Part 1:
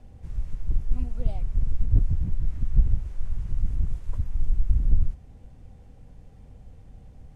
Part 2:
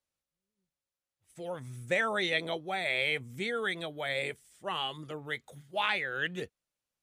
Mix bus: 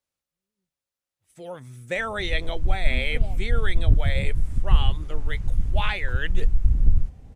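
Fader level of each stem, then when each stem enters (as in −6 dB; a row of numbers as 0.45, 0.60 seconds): +2.5, +1.5 decibels; 1.95, 0.00 seconds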